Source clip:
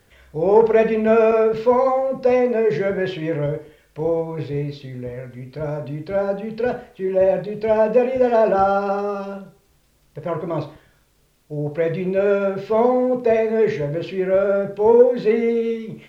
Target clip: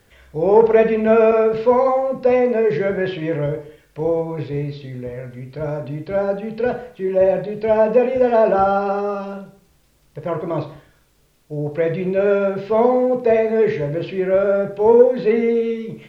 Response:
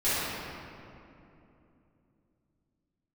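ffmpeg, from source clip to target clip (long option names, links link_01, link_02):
-filter_complex "[0:a]acrossover=split=4500[link_01][link_02];[link_02]acompressor=threshold=-59dB:ratio=4:attack=1:release=60[link_03];[link_01][link_03]amix=inputs=2:normalize=0,asplit=2[link_04][link_05];[1:a]atrim=start_sample=2205,afade=type=out:start_time=0.25:duration=0.01,atrim=end_sample=11466[link_06];[link_05][link_06]afir=irnorm=-1:irlink=0,volume=-27.5dB[link_07];[link_04][link_07]amix=inputs=2:normalize=0,volume=1dB"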